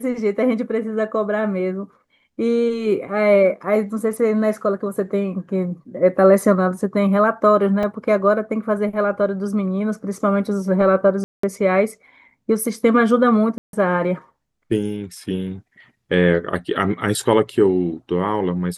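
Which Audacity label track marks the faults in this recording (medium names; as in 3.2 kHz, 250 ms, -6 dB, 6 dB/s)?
7.830000	7.830000	dropout 3.3 ms
11.240000	11.430000	dropout 194 ms
13.580000	13.730000	dropout 152 ms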